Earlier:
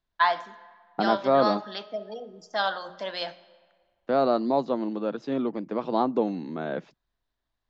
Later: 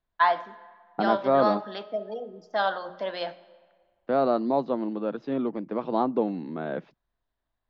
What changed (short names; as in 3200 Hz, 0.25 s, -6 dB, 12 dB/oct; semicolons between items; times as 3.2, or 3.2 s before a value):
first voice: add bell 460 Hz +4 dB 2 oct; master: add air absorption 190 m